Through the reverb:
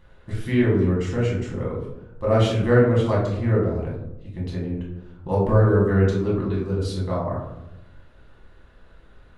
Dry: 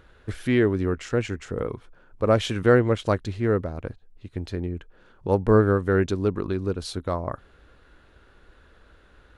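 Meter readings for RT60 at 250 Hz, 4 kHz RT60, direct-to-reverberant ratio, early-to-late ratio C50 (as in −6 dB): 1.2 s, 0.45 s, −5.5 dB, 3.5 dB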